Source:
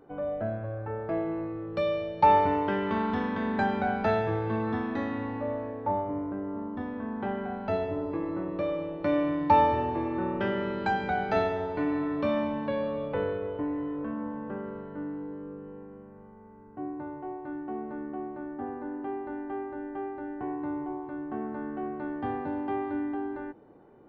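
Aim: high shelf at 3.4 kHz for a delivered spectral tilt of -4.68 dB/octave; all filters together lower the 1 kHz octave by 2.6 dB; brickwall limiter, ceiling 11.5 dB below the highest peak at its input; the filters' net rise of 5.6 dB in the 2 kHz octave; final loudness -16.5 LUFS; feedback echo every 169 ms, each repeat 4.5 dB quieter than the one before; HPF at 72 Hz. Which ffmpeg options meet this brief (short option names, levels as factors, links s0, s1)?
-af "highpass=72,equalizer=f=1000:t=o:g=-5,equalizer=f=2000:t=o:g=8,highshelf=f=3400:g=4.5,alimiter=limit=0.0708:level=0:latency=1,aecho=1:1:169|338|507|676|845|1014|1183|1352|1521:0.596|0.357|0.214|0.129|0.0772|0.0463|0.0278|0.0167|0.01,volume=6.68"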